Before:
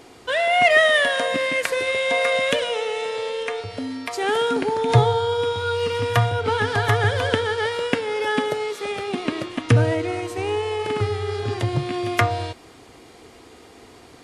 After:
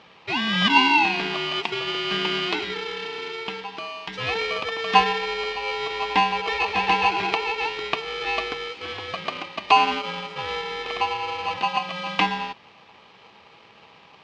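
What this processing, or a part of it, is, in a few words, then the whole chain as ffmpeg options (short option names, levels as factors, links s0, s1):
ring modulator pedal into a guitar cabinet: -af "aeval=exprs='val(0)*sgn(sin(2*PI*900*n/s))':c=same,highpass=100,equalizer=f=580:t=q:w=4:g=-8,equalizer=f=880:t=q:w=4:g=10,equalizer=f=1400:t=q:w=4:g=-10,equalizer=f=2600:t=q:w=4:g=6,lowpass=f=4300:w=0.5412,lowpass=f=4300:w=1.3066,volume=0.668"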